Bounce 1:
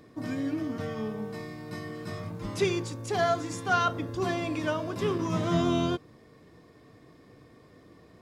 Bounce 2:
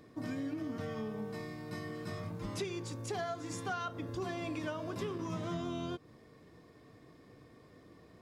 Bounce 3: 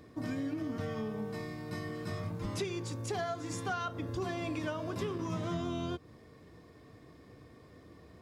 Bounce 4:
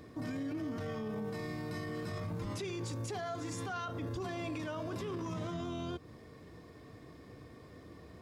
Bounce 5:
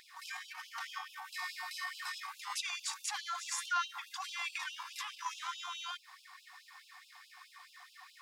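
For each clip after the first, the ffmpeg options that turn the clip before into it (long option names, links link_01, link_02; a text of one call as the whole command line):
ffmpeg -i in.wav -af "acompressor=threshold=-31dB:ratio=10,volume=-3.5dB" out.wav
ffmpeg -i in.wav -af "equalizer=frequency=76:width_type=o:width=0.59:gain=8,volume=2dB" out.wav
ffmpeg -i in.wav -af "alimiter=level_in=10.5dB:limit=-24dB:level=0:latency=1:release=14,volume=-10.5dB,volume=2.5dB" out.wav
ffmpeg -i in.wav -af "afftfilt=real='re*gte(b*sr/1024,700*pow(2600/700,0.5+0.5*sin(2*PI*4.7*pts/sr)))':imag='im*gte(b*sr/1024,700*pow(2600/700,0.5+0.5*sin(2*PI*4.7*pts/sr)))':win_size=1024:overlap=0.75,volume=9dB" out.wav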